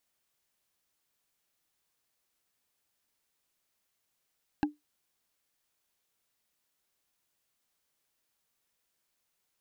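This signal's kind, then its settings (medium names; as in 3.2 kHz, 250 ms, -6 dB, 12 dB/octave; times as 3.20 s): wood hit, lowest mode 297 Hz, decay 0.17 s, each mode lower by 4 dB, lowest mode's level -20.5 dB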